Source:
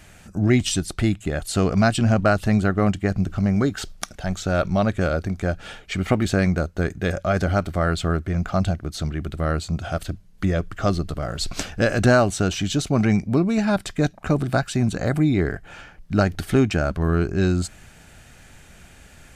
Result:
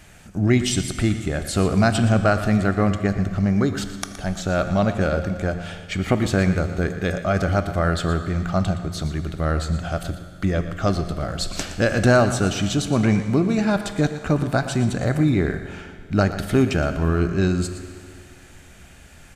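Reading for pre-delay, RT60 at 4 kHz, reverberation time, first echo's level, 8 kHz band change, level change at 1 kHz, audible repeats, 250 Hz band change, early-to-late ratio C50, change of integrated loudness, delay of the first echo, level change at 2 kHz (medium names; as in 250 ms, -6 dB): 20 ms, 2.3 s, 2.3 s, -12.5 dB, +0.5 dB, +0.5 dB, 1, +0.5 dB, 8.5 dB, +0.5 dB, 118 ms, +0.5 dB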